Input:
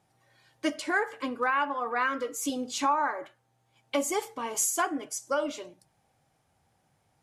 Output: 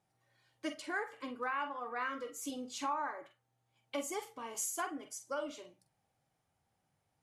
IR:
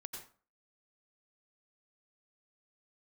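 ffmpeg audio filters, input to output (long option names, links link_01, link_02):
-filter_complex "[1:a]atrim=start_sample=2205,atrim=end_sample=3969,asetrate=83790,aresample=44100[link_01];[0:a][link_01]afir=irnorm=-1:irlink=0,volume=1dB"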